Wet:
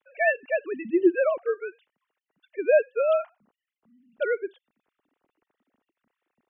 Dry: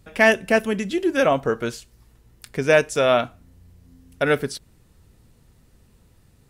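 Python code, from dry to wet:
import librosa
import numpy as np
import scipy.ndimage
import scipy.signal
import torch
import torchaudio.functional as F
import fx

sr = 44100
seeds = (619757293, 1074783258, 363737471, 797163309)

y = fx.sine_speech(x, sr)
y = y * 10.0 ** (-4.5 / 20.0)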